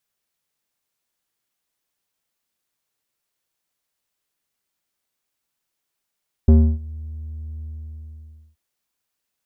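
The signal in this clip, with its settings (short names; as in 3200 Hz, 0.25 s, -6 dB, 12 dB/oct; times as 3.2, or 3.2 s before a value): synth note square D#2 12 dB/oct, low-pass 120 Hz, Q 1.3, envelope 1.5 oct, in 0.41 s, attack 4 ms, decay 0.30 s, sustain -24 dB, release 0.93 s, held 1.15 s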